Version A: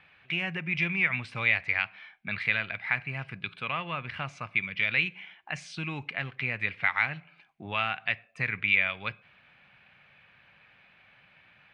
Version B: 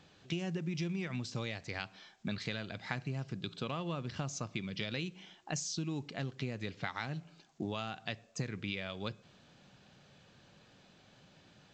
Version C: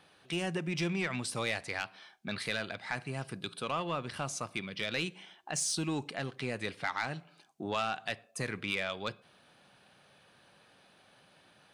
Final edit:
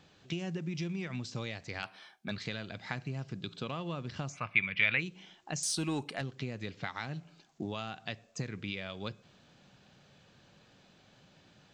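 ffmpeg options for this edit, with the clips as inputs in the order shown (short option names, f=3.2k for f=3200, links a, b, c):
-filter_complex "[2:a]asplit=2[a][b];[1:a]asplit=4[c][d][e][f];[c]atrim=end=1.832[g];[a]atrim=start=1.828:end=2.312[h];[d]atrim=start=2.308:end=4.39[i];[0:a]atrim=start=4.29:end=5.03[j];[e]atrim=start=4.93:end=5.632[k];[b]atrim=start=5.628:end=6.212[l];[f]atrim=start=6.208[m];[g][h]acrossfade=d=0.004:c1=hsin:c2=hsin[n];[n][i]acrossfade=d=0.004:c1=hsin:c2=hsin[o];[o][j]acrossfade=d=0.1:c1=tri:c2=tri[p];[p][k]acrossfade=d=0.1:c1=tri:c2=tri[q];[q][l]acrossfade=d=0.004:c1=hsin:c2=hsin[r];[r][m]acrossfade=d=0.004:c1=hsin:c2=hsin"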